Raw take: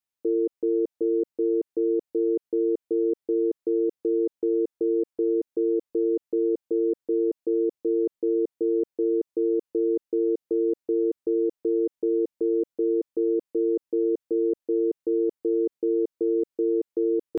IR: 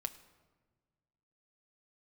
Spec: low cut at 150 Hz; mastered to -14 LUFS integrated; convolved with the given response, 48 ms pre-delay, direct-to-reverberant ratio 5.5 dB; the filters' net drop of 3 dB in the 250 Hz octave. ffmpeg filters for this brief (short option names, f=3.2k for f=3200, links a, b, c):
-filter_complex "[0:a]highpass=150,equalizer=f=250:t=o:g=-5,asplit=2[a][b];[1:a]atrim=start_sample=2205,adelay=48[c];[b][c]afir=irnorm=-1:irlink=0,volume=-4.5dB[d];[a][d]amix=inputs=2:normalize=0,volume=13.5dB"